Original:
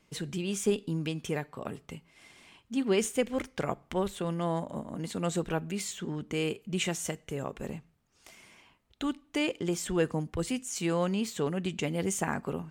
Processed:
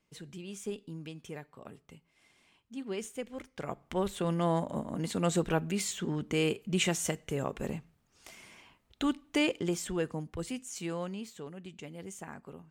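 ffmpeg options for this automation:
-af "volume=2dB,afade=t=in:st=3.5:d=0.83:silence=0.237137,afade=t=out:st=9.37:d=0.66:silence=0.421697,afade=t=out:st=10.7:d=0.74:silence=0.398107"

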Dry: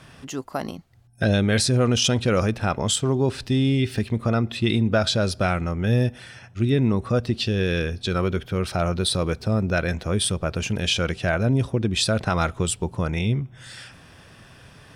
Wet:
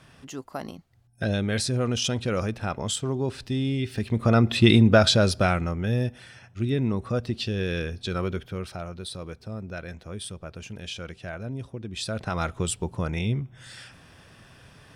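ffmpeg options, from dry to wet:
-af "volume=15.5dB,afade=t=in:st=3.94:d=0.66:silence=0.266073,afade=t=out:st=4.6:d=1.32:silence=0.298538,afade=t=out:st=8.31:d=0.55:silence=0.375837,afade=t=in:st=11.86:d=0.78:silence=0.316228"

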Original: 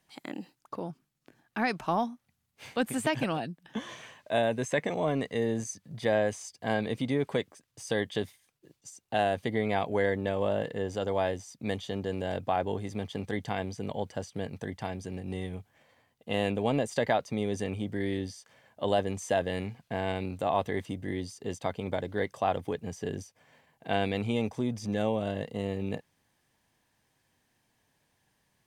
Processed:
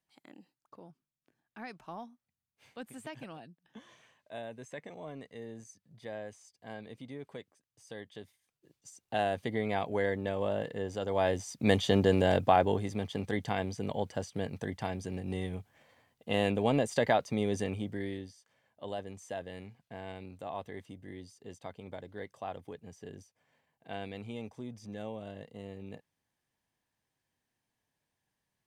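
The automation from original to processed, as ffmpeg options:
-af "volume=9dB,afade=t=in:st=8.24:d=0.8:silence=0.251189,afade=t=in:st=11.08:d=0.86:silence=0.237137,afade=t=out:st=11.94:d=1.01:silence=0.354813,afade=t=out:st=17.56:d=0.76:silence=0.251189"

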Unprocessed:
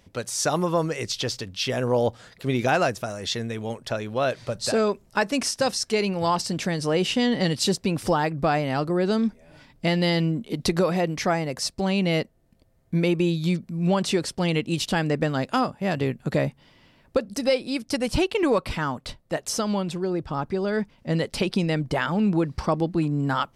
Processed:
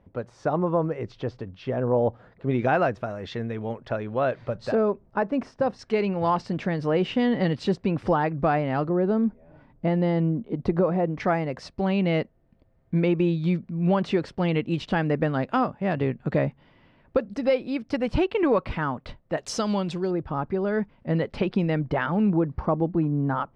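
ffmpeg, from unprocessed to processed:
-af "asetnsamples=n=441:p=0,asendcmd='2.51 lowpass f 1800;4.75 lowpass f 1100;5.79 lowpass f 2000;8.89 lowpass f 1100;11.2 lowpass f 2200;19.38 lowpass f 5300;20.11 lowpass f 2000;22.3 lowpass f 1200',lowpass=1.1k"

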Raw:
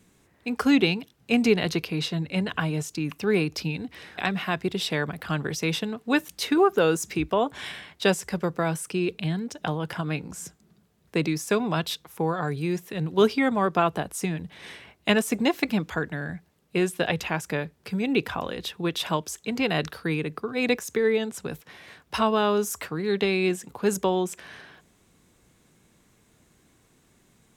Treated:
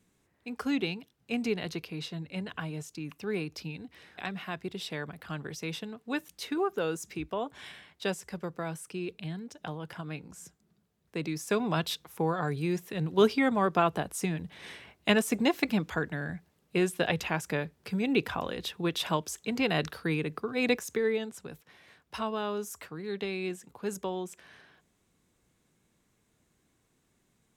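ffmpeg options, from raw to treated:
-af "volume=-3dB,afade=t=in:st=11.17:d=0.54:silence=0.446684,afade=t=out:st=20.7:d=0.78:silence=0.421697"

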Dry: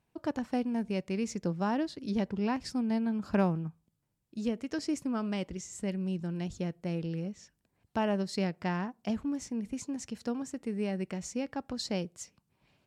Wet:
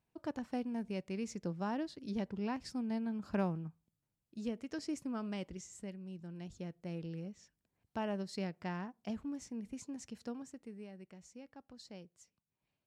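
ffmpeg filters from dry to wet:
-af "volume=-0.5dB,afade=t=out:st=5.63:d=0.36:silence=0.421697,afade=t=in:st=5.99:d=1.01:silence=0.473151,afade=t=out:st=10.2:d=0.69:silence=0.316228"

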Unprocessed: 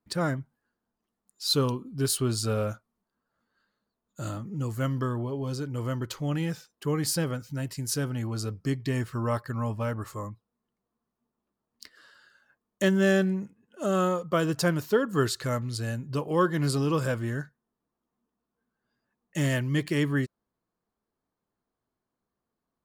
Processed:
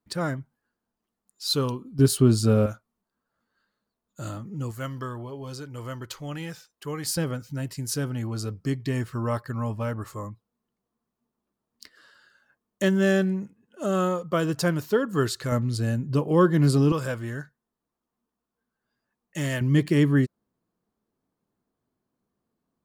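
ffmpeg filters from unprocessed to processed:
-af "asetnsamples=n=441:p=0,asendcmd='1.99 equalizer g 11.5;2.66 equalizer g -0.5;4.71 equalizer g -7;7.17 equalizer g 1.5;15.52 equalizer g 8;16.92 equalizer g -2.5;19.61 equalizer g 7.5',equalizer=f=200:t=o:w=2.7:g=-0.5"

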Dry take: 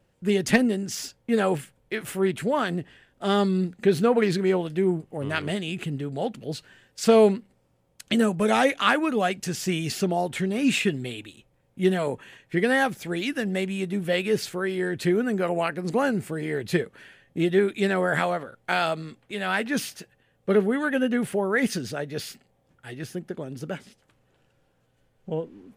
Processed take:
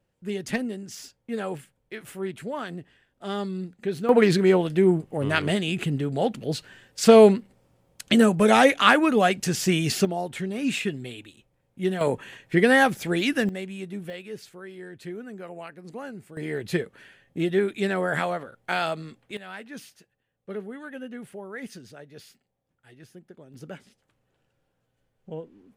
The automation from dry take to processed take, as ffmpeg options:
-af "asetnsamples=n=441:p=0,asendcmd='4.09 volume volume 4dB;10.05 volume volume -4dB;12.01 volume volume 4dB;13.49 volume volume -7dB;14.1 volume volume -14dB;16.37 volume volume -2dB;19.37 volume volume -14dB;23.54 volume volume -7dB',volume=-8dB"

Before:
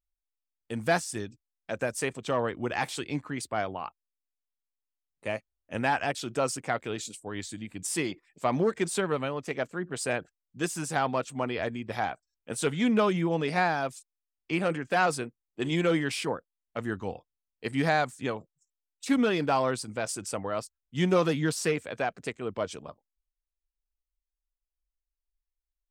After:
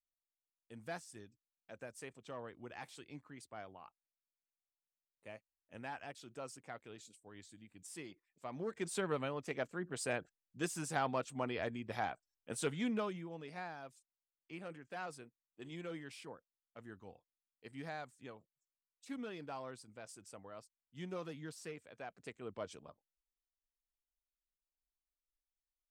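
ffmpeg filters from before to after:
-af "volume=-0.5dB,afade=t=in:st=8.54:d=0.56:silence=0.281838,afade=t=out:st=12.55:d=0.7:silence=0.251189,afade=t=in:st=21.97:d=0.48:silence=0.421697"

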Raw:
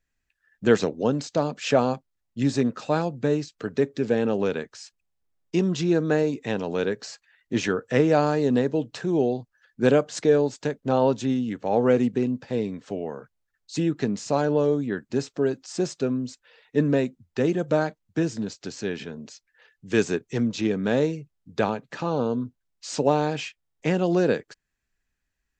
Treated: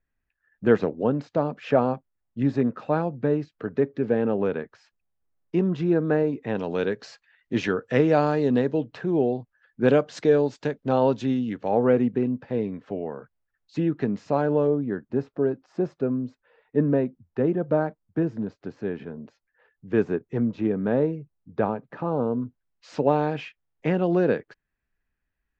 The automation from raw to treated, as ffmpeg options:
-af "asetnsamples=n=441:p=0,asendcmd='6.55 lowpass f 3700;8.81 lowpass f 2400;9.88 lowpass f 3900;11.71 lowpass f 2100;14.67 lowpass f 1300;22.43 lowpass f 2300',lowpass=1.8k"

